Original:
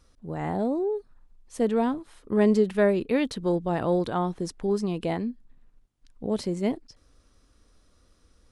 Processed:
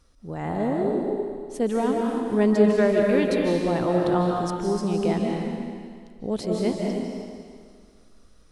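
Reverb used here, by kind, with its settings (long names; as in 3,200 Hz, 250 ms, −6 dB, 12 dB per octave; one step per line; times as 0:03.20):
comb and all-pass reverb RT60 2 s, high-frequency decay 1×, pre-delay 115 ms, DRR −1 dB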